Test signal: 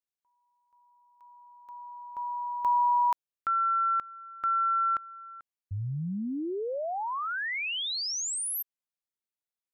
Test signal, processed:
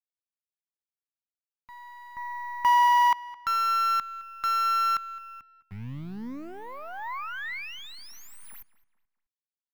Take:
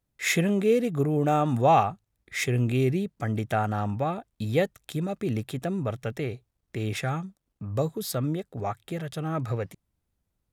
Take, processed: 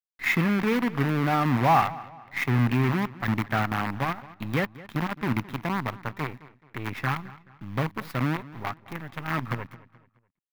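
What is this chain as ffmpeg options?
ffmpeg -i in.wav -filter_complex "[0:a]acrusher=bits=5:dc=4:mix=0:aa=0.000001,equalizer=frequency=125:width_type=o:width=1:gain=7,equalizer=frequency=250:width_type=o:width=1:gain=9,equalizer=frequency=500:width_type=o:width=1:gain=-5,equalizer=frequency=1000:width_type=o:width=1:gain=10,equalizer=frequency=2000:width_type=o:width=1:gain=10,equalizer=frequency=8000:width_type=o:width=1:gain=-10,asplit=2[link_01][link_02];[link_02]adelay=214,lowpass=frequency=4400:poles=1,volume=-18.5dB,asplit=2[link_03][link_04];[link_04]adelay=214,lowpass=frequency=4400:poles=1,volume=0.38,asplit=2[link_05][link_06];[link_06]adelay=214,lowpass=frequency=4400:poles=1,volume=0.38[link_07];[link_01][link_03][link_05][link_07]amix=inputs=4:normalize=0,volume=-7.5dB" out.wav

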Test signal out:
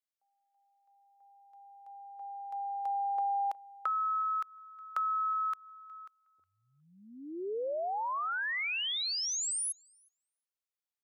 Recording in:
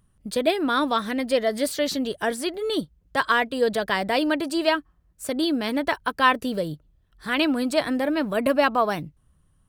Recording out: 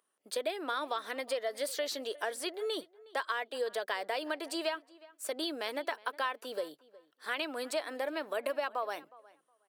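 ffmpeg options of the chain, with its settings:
ffmpeg -i in.wav -filter_complex "[0:a]highpass=frequency=400:width=0.5412,highpass=frequency=400:width=1.3066,acompressor=threshold=-25dB:ratio=6,asplit=2[link_01][link_02];[link_02]adelay=364,lowpass=frequency=2900:poles=1,volume=-21dB,asplit=2[link_03][link_04];[link_04]adelay=364,lowpass=frequency=2900:poles=1,volume=0.17[link_05];[link_01][link_03][link_05]amix=inputs=3:normalize=0,volume=-5.5dB" out.wav

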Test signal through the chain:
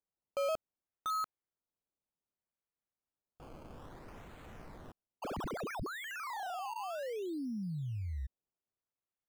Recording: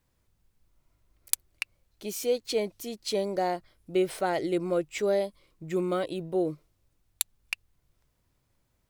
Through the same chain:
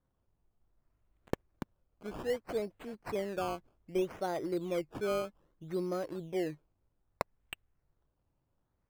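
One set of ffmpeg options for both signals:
ffmpeg -i in.wav -af "acrusher=samples=16:mix=1:aa=0.000001:lfo=1:lforange=16:lforate=0.63,highshelf=frequency=2200:gain=-10.5,volume=-6dB" out.wav

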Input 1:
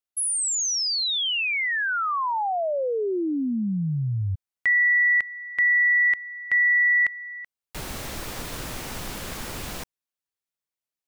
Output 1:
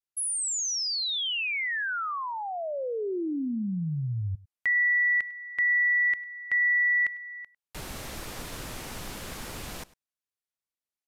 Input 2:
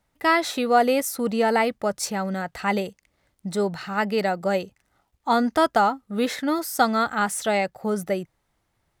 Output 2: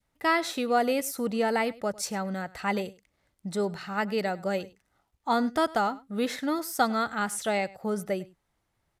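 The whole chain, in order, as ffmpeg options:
ffmpeg -i in.wav -af "adynamicequalizer=threshold=0.02:dfrequency=880:dqfactor=1.2:tfrequency=880:tqfactor=1.2:attack=5:release=100:ratio=0.375:range=2.5:mode=cutabove:tftype=bell,aecho=1:1:101:0.0891,aresample=32000,aresample=44100,volume=-4.5dB" out.wav

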